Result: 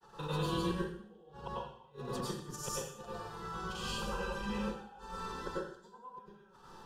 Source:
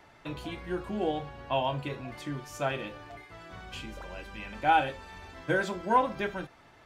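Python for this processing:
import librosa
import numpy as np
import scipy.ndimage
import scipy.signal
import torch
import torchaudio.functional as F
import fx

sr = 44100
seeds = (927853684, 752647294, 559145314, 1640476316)

y = fx.granulator(x, sr, seeds[0], grain_ms=100.0, per_s=20.0, spray_ms=100.0, spread_st=0)
y = fx.gate_flip(y, sr, shuts_db=-27.0, range_db=-36)
y = fx.fixed_phaser(y, sr, hz=430.0, stages=8)
y = fx.rev_plate(y, sr, seeds[1], rt60_s=0.6, hf_ratio=1.0, predelay_ms=85, drr_db=-6.5)
y = y * librosa.db_to_amplitude(2.5)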